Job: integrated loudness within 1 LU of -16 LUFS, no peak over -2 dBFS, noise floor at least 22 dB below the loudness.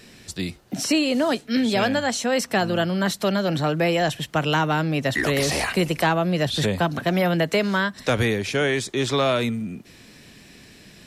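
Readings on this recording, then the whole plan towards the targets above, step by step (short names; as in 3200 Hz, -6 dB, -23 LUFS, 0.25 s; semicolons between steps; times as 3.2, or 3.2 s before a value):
ticks 25/s; loudness -22.5 LUFS; peak -10.0 dBFS; loudness target -16.0 LUFS
-> de-click; gain +6.5 dB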